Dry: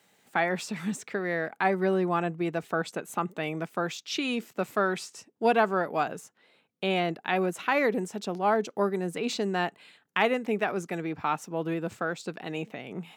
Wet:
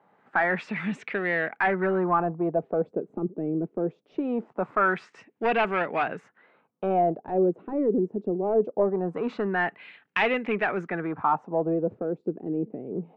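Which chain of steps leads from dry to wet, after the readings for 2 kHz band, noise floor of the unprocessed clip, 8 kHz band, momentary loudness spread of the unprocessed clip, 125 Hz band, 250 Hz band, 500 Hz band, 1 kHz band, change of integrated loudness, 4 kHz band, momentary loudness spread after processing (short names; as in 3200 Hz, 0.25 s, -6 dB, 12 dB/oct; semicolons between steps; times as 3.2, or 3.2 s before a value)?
+2.5 dB, -68 dBFS, under -20 dB, 8 LU, +1.0 dB, +2.5 dB, +2.5 dB, +1.5 dB, +2.0 dB, -7.0 dB, 7 LU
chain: HPF 100 Hz; soft clip -21.5 dBFS, distortion -12 dB; LFO low-pass sine 0.22 Hz 360–2500 Hz; gain +2.5 dB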